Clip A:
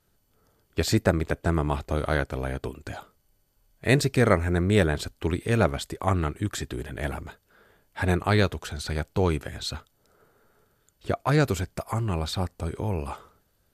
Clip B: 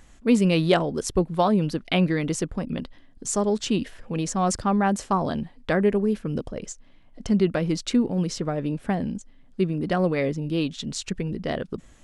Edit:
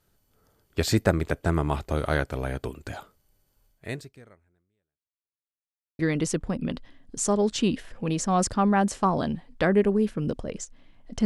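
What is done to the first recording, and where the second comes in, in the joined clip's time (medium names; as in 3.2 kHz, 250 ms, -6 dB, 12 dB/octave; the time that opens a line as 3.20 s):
clip A
3.67–5.54 s: fade out exponential
5.54–5.99 s: mute
5.99 s: go over to clip B from 2.07 s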